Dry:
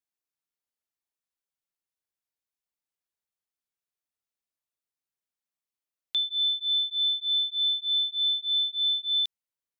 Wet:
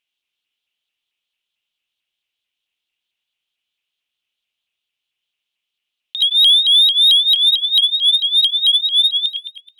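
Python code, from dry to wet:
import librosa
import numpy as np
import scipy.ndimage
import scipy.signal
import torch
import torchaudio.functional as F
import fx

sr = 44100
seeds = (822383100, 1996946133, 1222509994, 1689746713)

y = fx.peak_eq(x, sr, hz=3600.0, db=fx.steps((0.0, 10.5), (6.21, -2.0), (7.36, 8.5)), octaves=1.6)
y = fx.over_compress(y, sr, threshold_db=-25.0, ratio=-0.5)
y = fx.echo_filtered(y, sr, ms=107, feedback_pct=74, hz=3700.0, wet_db=-7.0)
y = fx.leveller(y, sr, passes=2)
y = fx.curve_eq(y, sr, hz=(1800.0, 3000.0, 4500.0), db=(0, 14, -3))
y = fx.vibrato_shape(y, sr, shape='saw_up', rate_hz=4.5, depth_cents=160.0)
y = y * 10.0 ** (1.0 / 20.0)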